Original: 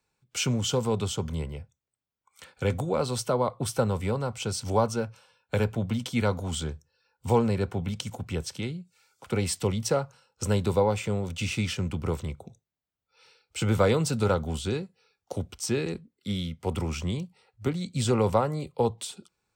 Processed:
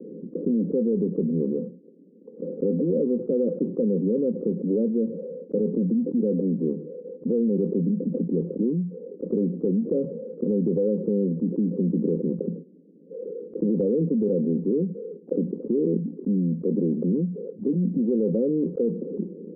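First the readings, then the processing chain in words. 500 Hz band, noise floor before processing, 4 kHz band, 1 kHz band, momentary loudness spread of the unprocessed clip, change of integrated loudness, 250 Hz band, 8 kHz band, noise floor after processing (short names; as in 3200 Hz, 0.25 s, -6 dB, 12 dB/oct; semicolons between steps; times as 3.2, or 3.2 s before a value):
+3.5 dB, under -85 dBFS, under -40 dB, under -30 dB, 13 LU, +3.5 dB, +8.5 dB, under -40 dB, -50 dBFS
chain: Chebyshev band-pass 170–520 Hz, order 5; bell 280 Hz +5.5 dB 0.81 oct; limiter -23 dBFS, peak gain reduction 10.5 dB; fast leveller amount 70%; gain +5.5 dB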